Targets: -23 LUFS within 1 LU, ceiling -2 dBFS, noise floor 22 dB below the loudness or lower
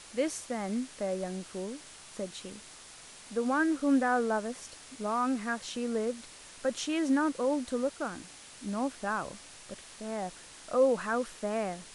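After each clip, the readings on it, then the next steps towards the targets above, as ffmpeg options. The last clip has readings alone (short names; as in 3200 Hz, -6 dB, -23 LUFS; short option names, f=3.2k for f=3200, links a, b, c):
noise floor -51 dBFS; noise floor target -54 dBFS; loudness -32.0 LUFS; peak -15.0 dBFS; loudness target -23.0 LUFS
-> -af "afftdn=nr=6:nf=-51"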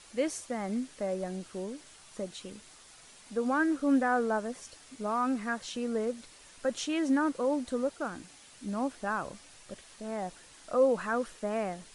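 noise floor -55 dBFS; loudness -32.0 LUFS; peak -15.0 dBFS; loudness target -23.0 LUFS
-> -af "volume=9dB"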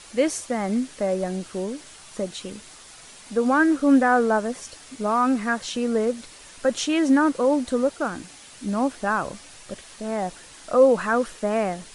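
loudness -23.0 LUFS; peak -6.0 dBFS; noise floor -46 dBFS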